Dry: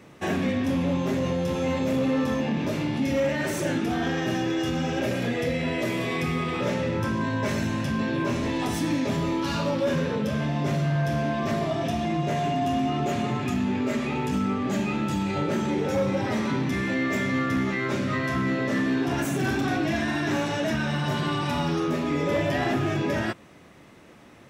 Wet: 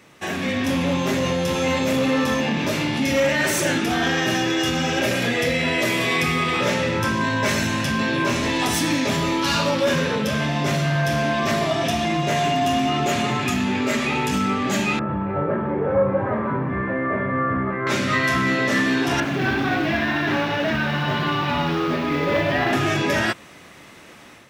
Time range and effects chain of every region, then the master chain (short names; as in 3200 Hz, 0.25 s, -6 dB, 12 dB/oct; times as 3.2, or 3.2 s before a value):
14.99–17.87 LPF 1400 Hz 24 dB/oct + comb 1.8 ms, depth 36%
19.2–22.73 modulation noise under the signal 12 dB + air absorption 300 m
whole clip: tilt shelf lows -5 dB, about 920 Hz; AGC gain up to 7 dB